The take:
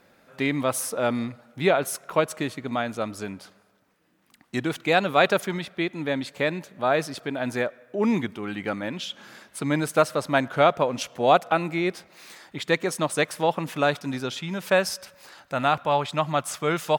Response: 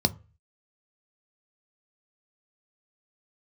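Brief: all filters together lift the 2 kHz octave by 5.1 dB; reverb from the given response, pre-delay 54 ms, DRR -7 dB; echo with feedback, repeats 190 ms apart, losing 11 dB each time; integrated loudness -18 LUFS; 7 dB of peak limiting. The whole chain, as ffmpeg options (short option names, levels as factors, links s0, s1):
-filter_complex "[0:a]equalizer=f=2000:t=o:g=6.5,alimiter=limit=0.376:level=0:latency=1,aecho=1:1:190|380|570:0.282|0.0789|0.0221,asplit=2[s0][s1];[1:a]atrim=start_sample=2205,adelay=54[s2];[s1][s2]afir=irnorm=-1:irlink=0,volume=0.708[s3];[s0][s3]amix=inputs=2:normalize=0,volume=0.596"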